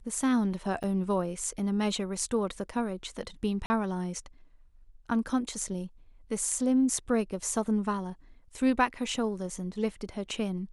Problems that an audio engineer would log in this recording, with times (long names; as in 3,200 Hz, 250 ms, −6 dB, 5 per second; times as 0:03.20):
0:00.83–0:00.84: drop-out 7.2 ms
0:03.66–0:03.70: drop-out 40 ms